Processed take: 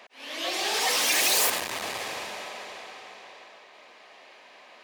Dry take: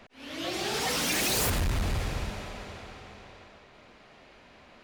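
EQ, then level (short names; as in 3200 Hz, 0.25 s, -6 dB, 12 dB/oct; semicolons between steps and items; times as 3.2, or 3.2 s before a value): HPF 570 Hz 12 dB/oct; notch 1400 Hz, Q 7.8; +5.5 dB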